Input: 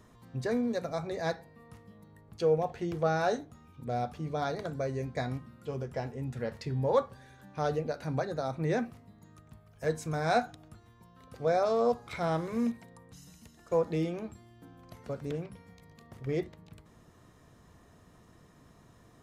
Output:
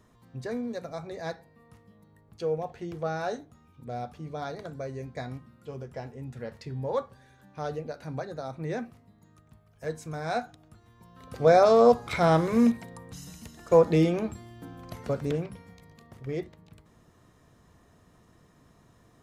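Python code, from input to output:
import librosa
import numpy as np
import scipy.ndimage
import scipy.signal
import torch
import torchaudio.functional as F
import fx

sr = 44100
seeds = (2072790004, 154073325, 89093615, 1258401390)

y = fx.gain(x, sr, db=fx.line((10.66, -3.0), (11.42, 9.0), (15.0, 9.0), (16.32, -1.0)))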